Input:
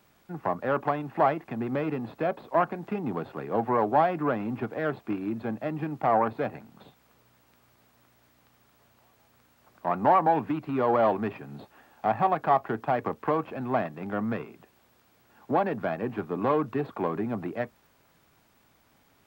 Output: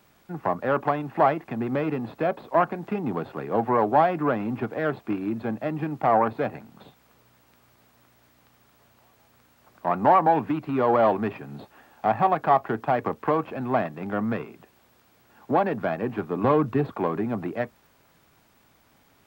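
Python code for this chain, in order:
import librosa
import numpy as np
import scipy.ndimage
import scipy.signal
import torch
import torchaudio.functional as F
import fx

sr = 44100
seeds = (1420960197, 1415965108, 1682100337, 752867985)

y = fx.low_shelf(x, sr, hz=190.0, db=8.5, at=(16.44, 16.93))
y = y * librosa.db_to_amplitude(3.0)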